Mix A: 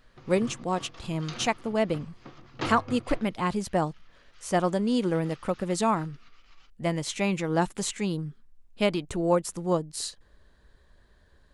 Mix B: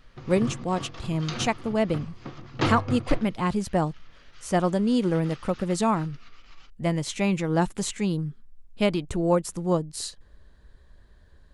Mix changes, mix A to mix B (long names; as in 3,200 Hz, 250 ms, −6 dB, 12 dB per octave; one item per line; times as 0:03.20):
background +5.5 dB
master: add low-shelf EQ 200 Hz +7 dB